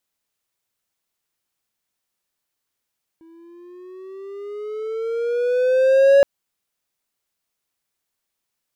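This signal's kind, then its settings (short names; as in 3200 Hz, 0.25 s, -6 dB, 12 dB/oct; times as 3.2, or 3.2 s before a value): gliding synth tone triangle, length 3.02 s, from 325 Hz, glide +9.5 st, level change +36.5 dB, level -6 dB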